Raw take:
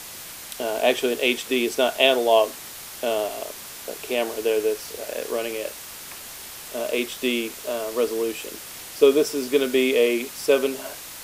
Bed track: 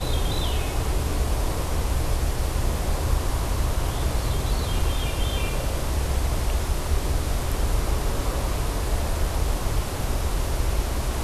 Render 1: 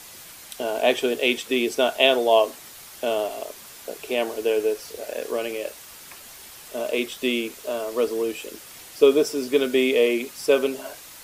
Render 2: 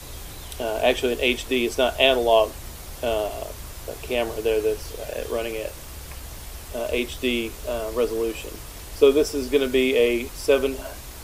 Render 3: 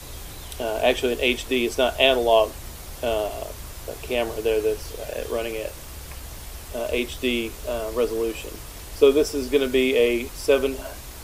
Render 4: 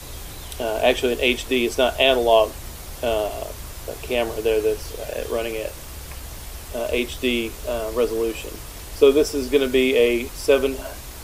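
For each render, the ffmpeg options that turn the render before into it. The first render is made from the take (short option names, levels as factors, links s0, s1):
-af "afftdn=nr=6:nf=-39"
-filter_complex "[1:a]volume=0.178[s0];[0:a][s0]amix=inputs=2:normalize=0"
-af anull
-af "volume=1.26,alimiter=limit=0.708:level=0:latency=1"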